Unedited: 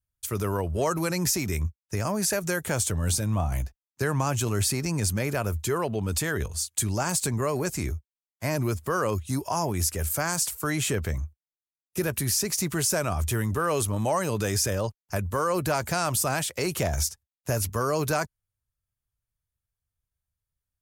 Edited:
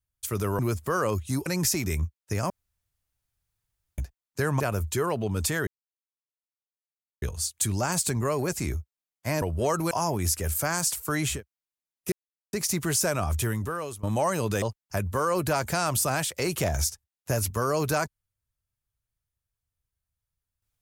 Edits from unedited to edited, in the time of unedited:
0.59–1.08 swap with 8.59–9.46
2.12–3.6 room tone
4.22–5.32 cut
6.39 insert silence 1.55 s
10.9–11.24 cut, crossfade 0.16 s
12.01–12.42 mute
13.3–13.92 fade out, to -20.5 dB
14.51–14.81 cut

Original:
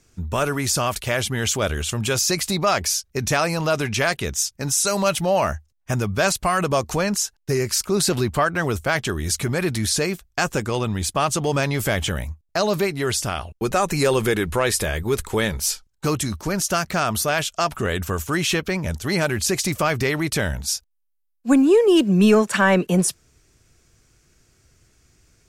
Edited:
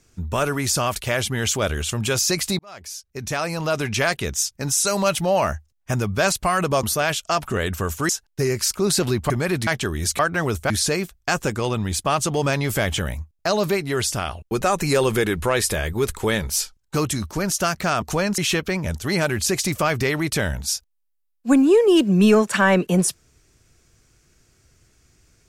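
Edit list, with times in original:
2.59–3.96 fade in
6.83–7.19 swap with 17.12–18.38
8.4–8.91 swap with 9.43–9.8

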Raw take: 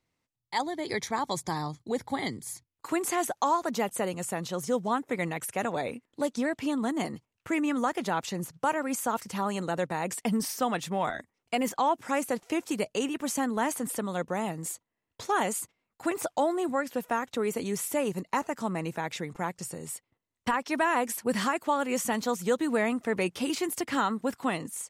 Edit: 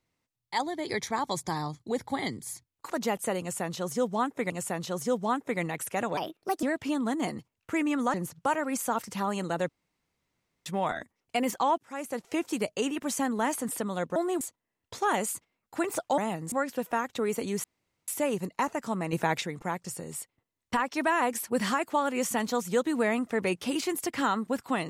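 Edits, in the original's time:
2.9–3.62 cut
4.12–5.22 loop, 2 plays
5.79–6.4 speed 133%
7.91–8.32 cut
9.87–10.84 room tone
11.96–12.57 fade in, from -22.5 dB
14.34–14.68 swap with 16.45–16.7
17.82 insert room tone 0.44 s
18.87–19.15 gain +6 dB

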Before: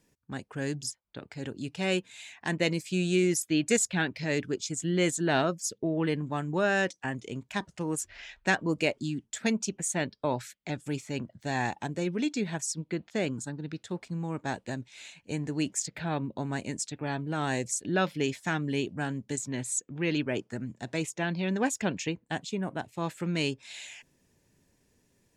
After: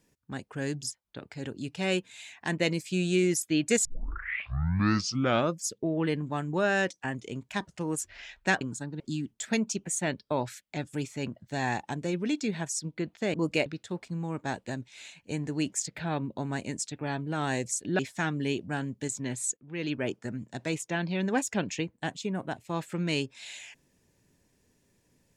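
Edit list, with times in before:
3.85 tape start 1.73 s
8.61–8.93 swap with 13.27–13.66
17.99–18.27 cut
19.85–20.33 fade in, from -18 dB

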